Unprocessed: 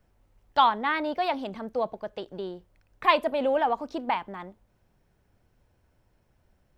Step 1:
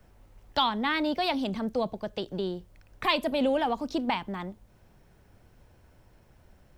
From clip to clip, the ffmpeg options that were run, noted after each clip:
-filter_complex "[0:a]asplit=2[a][b];[b]alimiter=limit=-15.5dB:level=0:latency=1:release=222,volume=-0.5dB[c];[a][c]amix=inputs=2:normalize=0,acrossover=split=280|3000[d][e][f];[e]acompressor=threshold=-53dB:ratio=1.5[g];[d][g][f]amix=inputs=3:normalize=0,volume=3dB"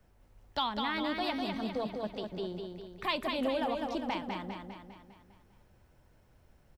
-af "aecho=1:1:201|402|603|804|1005|1206|1407:0.596|0.316|0.167|0.0887|0.047|0.0249|0.0132,volume=-7dB"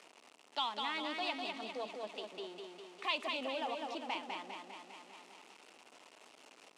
-af "aeval=exprs='val(0)+0.5*0.00668*sgn(val(0))':c=same,highpass=f=320:w=0.5412,highpass=f=320:w=1.3066,equalizer=f=360:t=q:w=4:g=-5,equalizer=f=540:t=q:w=4:g=-5,equalizer=f=1.6k:t=q:w=4:g=-6,equalizer=f=2.7k:t=q:w=4:g=7,lowpass=f=9.1k:w=0.5412,lowpass=f=9.1k:w=1.3066,volume=-4.5dB"

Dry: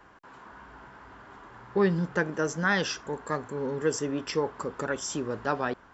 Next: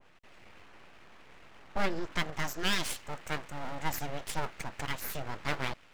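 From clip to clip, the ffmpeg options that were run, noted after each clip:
-af "aeval=exprs='abs(val(0))':c=same,adynamicequalizer=threshold=0.00501:dfrequency=1600:dqfactor=0.7:tfrequency=1600:tqfactor=0.7:attack=5:release=100:ratio=0.375:range=2.5:mode=boostabove:tftype=highshelf,volume=-4dB"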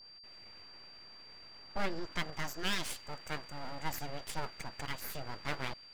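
-af "aeval=exprs='val(0)+0.00398*sin(2*PI*4700*n/s)':c=same,volume=-4.5dB"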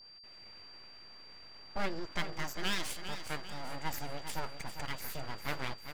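-af "aecho=1:1:399|798|1197|1596|1995:0.316|0.152|0.0729|0.035|0.0168"

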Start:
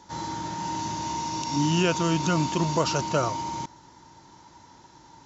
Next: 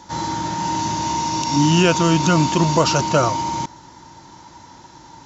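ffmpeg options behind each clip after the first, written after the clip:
-af "bandreject=f=420:w=12,acontrast=82,volume=1.5dB"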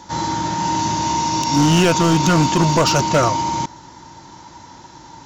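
-af "volume=12dB,asoftclip=hard,volume=-12dB,volume=2.5dB"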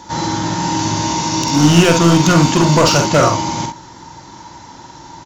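-af "aecho=1:1:47|65:0.501|0.282,volume=3dB"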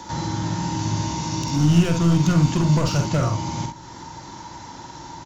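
-filter_complex "[0:a]acrossover=split=170[a][b];[b]acompressor=threshold=-36dB:ratio=2[c];[a][c]amix=inputs=2:normalize=0"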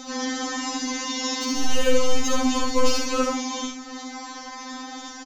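-af "asoftclip=type=tanh:threshold=-9dB,aecho=1:1:75:0.596,afftfilt=real='re*3.46*eq(mod(b,12),0)':imag='im*3.46*eq(mod(b,12),0)':win_size=2048:overlap=0.75,volume=6dB"

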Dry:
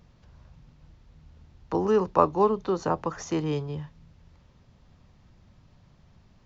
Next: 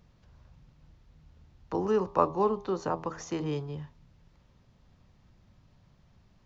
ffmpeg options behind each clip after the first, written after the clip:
-af "bandreject=f=80.82:t=h:w=4,bandreject=f=161.64:t=h:w=4,bandreject=f=242.46:t=h:w=4,bandreject=f=323.28:t=h:w=4,bandreject=f=404.1:t=h:w=4,bandreject=f=484.92:t=h:w=4,bandreject=f=565.74:t=h:w=4,bandreject=f=646.56:t=h:w=4,bandreject=f=727.38:t=h:w=4,bandreject=f=808.2:t=h:w=4,bandreject=f=889.02:t=h:w=4,bandreject=f=969.84:t=h:w=4,bandreject=f=1.05066k:t=h:w=4,bandreject=f=1.13148k:t=h:w=4,bandreject=f=1.2123k:t=h:w=4,volume=-4dB"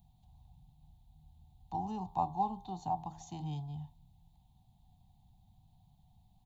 -af "firequalizer=gain_entry='entry(160,0);entry(520,-30);entry(750,9);entry(1300,-28);entry(3700,1);entry(5300,-13);entry(9000,11)':delay=0.05:min_phase=1,volume=-3dB"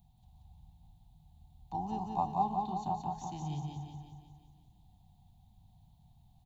-af "aecho=1:1:179|358|537|716|895|1074|1253|1432:0.668|0.368|0.202|0.111|0.0612|0.0336|0.0185|0.0102"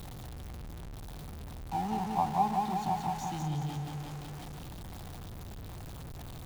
-af "aeval=exprs='val(0)+0.5*0.00944*sgn(val(0))':c=same,volume=2dB"

